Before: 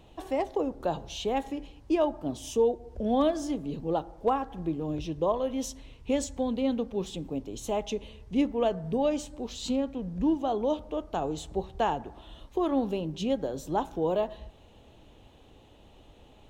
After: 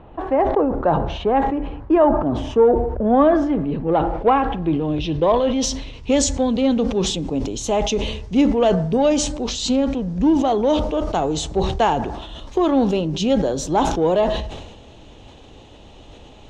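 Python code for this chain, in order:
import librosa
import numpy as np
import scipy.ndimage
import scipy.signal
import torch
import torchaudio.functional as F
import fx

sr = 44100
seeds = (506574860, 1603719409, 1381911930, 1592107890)

p1 = 10.0 ** (-28.5 / 20.0) * np.tanh(x / 10.0 ** (-28.5 / 20.0))
p2 = x + (p1 * librosa.db_to_amplitude(-9.0))
p3 = fx.filter_sweep_lowpass(p2, sr, from_hz=1400.0, to_hz=6400.0, start_s=3.11, end_s=6.26, q=1.5)
p4 = fx.sustainer(p3, sr, db_per_s=50.0)
y = p4 * librosa.db_to_amplitude(8.0)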